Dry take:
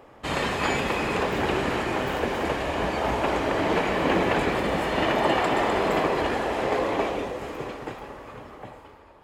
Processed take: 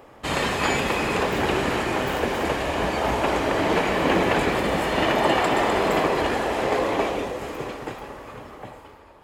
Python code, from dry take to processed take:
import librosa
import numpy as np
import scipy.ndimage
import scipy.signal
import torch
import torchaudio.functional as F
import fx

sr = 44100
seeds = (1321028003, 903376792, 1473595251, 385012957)

y = fx.high_shelf(x, sr, hz=5700.0, db=5.5)
y = F.gain(torch.from_numpy(y), 2.0).numpy()